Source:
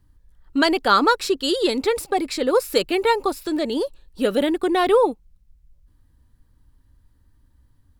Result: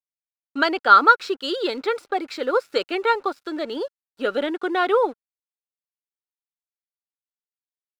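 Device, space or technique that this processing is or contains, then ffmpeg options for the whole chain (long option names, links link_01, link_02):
pocket radio on a weak battery: -af "highpass=340,lowpass=4300,aeval=exprs='sgn(val(0))*max(abs(val(0))-0.00355,0)':channel_layout=same,equalizer=frequency=1400:width_type=o:width=0.24:gain=10.5,volume=-2dB"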